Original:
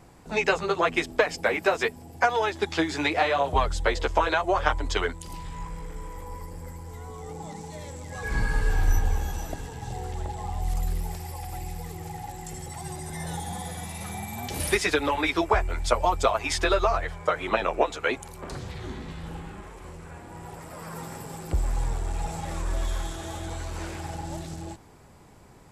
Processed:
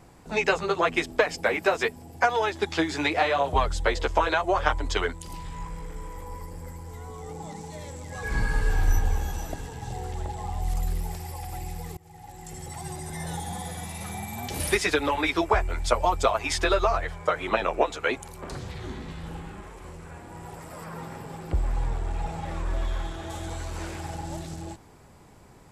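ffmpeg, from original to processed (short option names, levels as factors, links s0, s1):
-filter_complex "[0:a]asettb=1/sr,asplit=3[s0][s1][s2];[s0]atrim=end=20.844[s3];[s1]atrim=start=20.84:end=23.3,asetpts=PTS-STARTPTS,afade=t=in:d=0.004:c=qsin,afade=t=out:st=2.456:d=0.004:c=qsin,acrossover=split=4000[s4][s5];[s5]acompressor=threshold=0.00158:ratio=4:attack=1:release=60[s6];[s4][s6]amix=inputs=2:normalize=0[s7];[s2]atrim=start=23.296[s8];[s3][s7]acrossfade=d=0.004:c1=hsin:c2=qsin[s9];[s9][s8]acrossfade=d=0.004:c1=qsin:c2=hsin,asplit=2[s10][s11];[s10]atrim=end=11.97,asetpts=PTS-STARTPTS,afade=t=out:st=11.966:d=0.004:c=hsin:silence=0.0707946[s12];[s11]atrim=start=11.97,asetpts=PTS-STARTPTS,afade=t=in:d=0.75:silence=0.0707946[s13];[s12][s13]concat=n=2:v=0:a=1"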